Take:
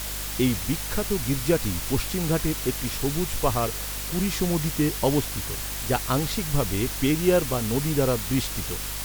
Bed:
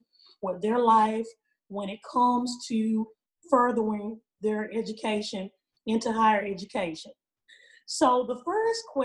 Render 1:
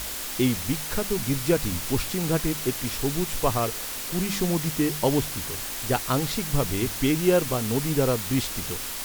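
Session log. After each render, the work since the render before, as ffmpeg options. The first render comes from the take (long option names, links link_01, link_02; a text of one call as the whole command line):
ffmpeg -i in.wav -af "bandreject=frequency=50:width_type=h:width=4,bandreject=frequency=100:width_type=h:width=4,bandreject=frequency=150:width_type=h:width=4,bandreject=frequency=200:width_type=h:width=4" out.wav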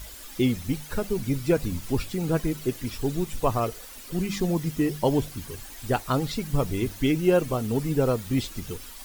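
ffmpeg -i in.wav -af "afftdn=noise_reduction=13:noise_floor=-33" out.wav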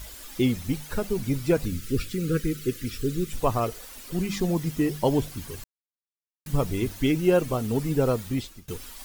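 ffmpeg -i in.wav -filter_complex "[0:a]asettb=1/sr,asplit=3[link_01][link_02][link_03];[link_01]atrim=end=1.654[link_04];[link_02]atrim=start=1.65:end=3.33,asetpts=PTS-STARTPTS,afade=type=in:duration=0.004:curve=qsin,afade=type=out:start_time=1.676:duration=0.004:curve=qsin,asuperstop=centerf=800:order=12:qfactor=1.2[link_05];[link_03]atrim=start=3.326[link_06];[link_04][link_05]acrossfade=duration=0.004:curve1=hsin:curve2=qsin[link_07];[link_07][link_06]acrossfade=duration=0.004:curve1=qsin:curve2=hsin,asplit=4[link_08][link_09][link_10][link_11];[link_08]atrim=end=5.64,asetpts=PTS-STARTPTS,afade=type=out:start_time=5.636:duration=0.004:curve=hsin[link_12];[link_09]atrim=start=5.64:end=6.46,asetpts=PTS-STARTPTS,volume=0[link_13];[link_10]atrim=start=6.46:end=8.68,asetpts=PTS-STARTPTS,afade=type=in:duration=0.004:curve=hsin,afade=type=out:start_time=1.75:duration=0.47:silence=0.0668344[link_14];[link_11]atrim=start=8.68,asetpts=PTS-STARTPTS,afade=type=in:duration=0.004:curve=hsin:silence=0.0668344[link_15];[link_12][link_13][link_14][link_15]concat=n=4:v=0:a=1" out.wav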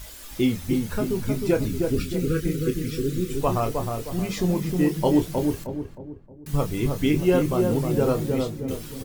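ffmpeg -i in.wav -filter_complex "[0:a]asplit=2[link_01][link_02];[link_02]adelay=27,volume=-7.5dB[link_03];[link_01][link_03]amix=inputs=2:normalize=0,asplit=2[link_04][link_05];[link_05]adelay=312,lowpass=frequency=880:poles=1,volume=-3dB,asplit=2[link_06][link_07];[link_07]adelay=312,lowpass=frequency=880:poles=1,volume=0.45,asplit=2[link_08][link_09];[link_09]adelay=312,lowpass=frequency=880:poles=1,volume=0.45,asplit=2[link_10][link_11];[link_11]adelay=312,lowpass=frequency=880:poles=1,volume=0.45,asplit=2[link_12][link_13];[link_13]adelay=312,lowpass=frequency=880:poles=1,volume=0.45,asplit=2[link_14][link_15];[link_15]adelay=312,lowpass=frequency=880:poles=1,volume=0.45[link_16];[link_06][link_08][link_10][link_12][link_14][link_16]amix=inputs=6:normalize=0[link_17];[link_04][link_17]amix=inputs=2:normalize=0" out.wav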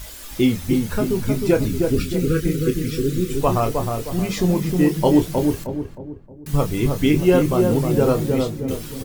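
ffmpeg -i in.wav -af "volume=4.5dB" out.wav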